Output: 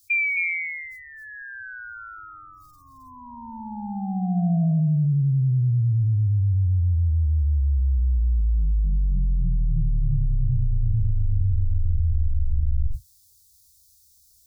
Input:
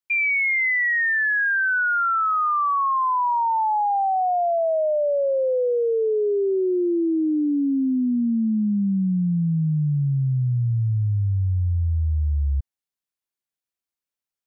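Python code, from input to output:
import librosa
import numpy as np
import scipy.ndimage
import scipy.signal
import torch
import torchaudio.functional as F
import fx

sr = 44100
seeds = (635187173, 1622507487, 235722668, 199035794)

p1 = fx.octave_divider(x, sr, octaves=2, level_db=2.0)
p2 = scipy.signal.sosfilt(scipy.signal.cheby2(4, 50, [270.0, 2000.0], 'bandstop', fs=sr, output='sos'), p1)
p3 = fx.spec_gate(p2, sr, threshold_db=-25, keep='strong')
p4 = p3 + fx.echo_single(p3, sr, ms=266, db=-5.0, dry=0)
p5 = fx.env_flatten(p4, sr, amount_pct=100)
y = F.gain(torch.from_numpy(p5), -7.5).numpy()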